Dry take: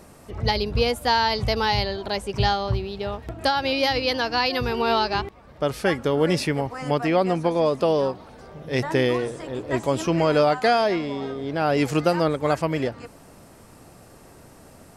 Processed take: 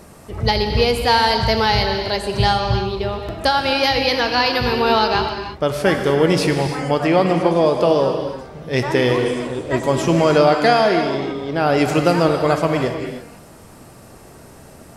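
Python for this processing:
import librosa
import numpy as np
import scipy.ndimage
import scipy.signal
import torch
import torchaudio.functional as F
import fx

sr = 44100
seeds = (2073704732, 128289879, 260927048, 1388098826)

y = fx.rev_gated(x, sr, seeds[0], gate_ms=360, shape='flat', drr_db=4.5)
y = F.gain(torch.from_numpy(y), 4.5).numpy()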